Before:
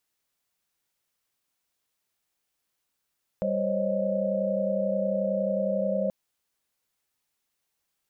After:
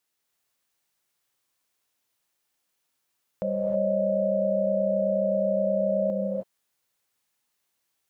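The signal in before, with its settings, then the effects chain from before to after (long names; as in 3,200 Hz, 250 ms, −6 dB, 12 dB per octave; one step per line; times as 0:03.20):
held notes G3/C5/C#5/D#5 sine, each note −29.5 dBFS 2.68 s
low-shelf EQ 84 Hz −8 dB
reverb whose tail is shaped and stops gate 340 ms rising, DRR 0.5 dB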